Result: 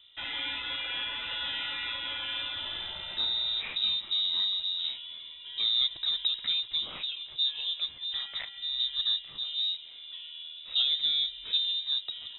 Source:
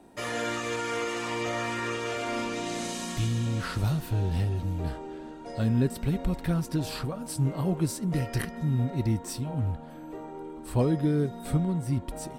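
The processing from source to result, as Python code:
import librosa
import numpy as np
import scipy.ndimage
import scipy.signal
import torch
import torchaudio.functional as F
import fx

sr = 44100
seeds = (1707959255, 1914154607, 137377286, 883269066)

y = fx.highpass(x, sr, hz=210.0, slope=6, at=(7.58, 8.8))
y = fx.freq_invert(y, sr, carrier_hz=3800)
y = F.gain(torch.from_numpy(y), -3.5).numpy()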